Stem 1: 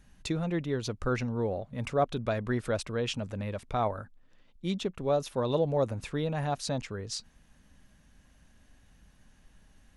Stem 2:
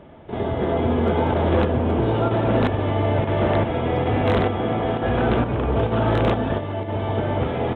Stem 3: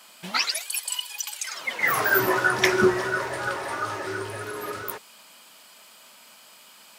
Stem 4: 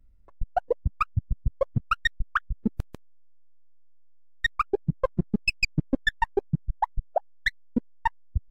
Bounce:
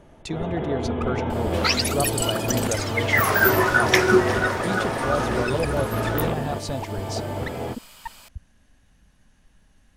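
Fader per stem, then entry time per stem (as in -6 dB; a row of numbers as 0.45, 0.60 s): +1.0, -6.5, +2.5, -10.5 dB; 0.00, 0.00, 1.30, 0.00 s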